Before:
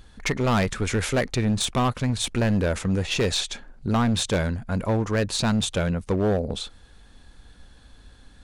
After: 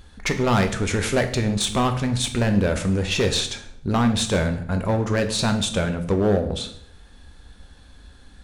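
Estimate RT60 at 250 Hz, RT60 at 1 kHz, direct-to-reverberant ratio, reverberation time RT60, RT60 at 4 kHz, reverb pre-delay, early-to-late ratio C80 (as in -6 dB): 0.80 s, 0.60 s, 6.0 dB, 0.65 s, 0.55 s, 6 ms, 14.5 dB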